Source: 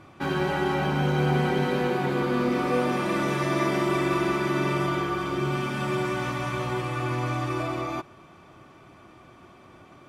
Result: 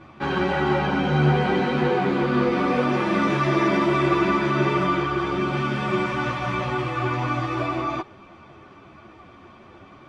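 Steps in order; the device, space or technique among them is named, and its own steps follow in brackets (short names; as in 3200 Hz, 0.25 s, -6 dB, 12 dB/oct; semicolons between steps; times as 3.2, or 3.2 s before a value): string-machine ensemble chorus (ensemble effect; LPF 4600 Hz 12 dB/oct); gain +7 dB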